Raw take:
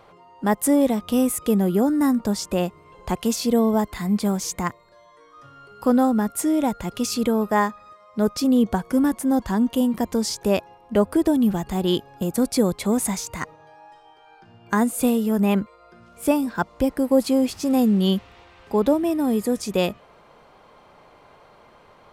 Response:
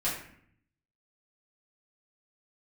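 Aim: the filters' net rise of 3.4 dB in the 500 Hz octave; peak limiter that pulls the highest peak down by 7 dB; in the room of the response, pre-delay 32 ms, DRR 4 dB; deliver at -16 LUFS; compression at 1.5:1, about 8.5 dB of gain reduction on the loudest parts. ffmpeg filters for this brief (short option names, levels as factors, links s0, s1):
-filter_complex "[0:a]equalizer=f=500:t=o:g=4,acompressor=threshold=0.0178:ratio=1.5,alimiter=limit=0.1:level=0:latency=1,asplit=2[s0][s1];[1:a]atrim=start_sample=2205,adelay=32[s2];[s1][s2]afir=irnorm=-1:irlink=0,volume=0.266[s3];[s0][s3]amix=inputs=2:normalize=0,volume=4.22"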